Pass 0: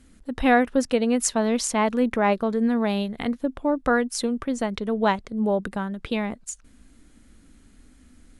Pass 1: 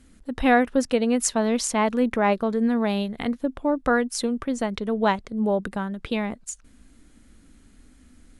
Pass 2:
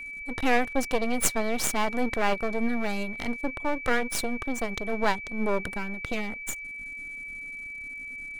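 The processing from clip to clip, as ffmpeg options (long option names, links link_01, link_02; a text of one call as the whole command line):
ffmpeg -i in.wav -af anull out.wav
ffmpeg -i in.wav -af "highshelf=frequency=9100:gain=10,aeval=exprs='max(val(0),0)':channel_layout=same,aeval=exprs='val(0)+0.0158*sin(2*PI*2300*n/s)':channel_layout=same" out.wav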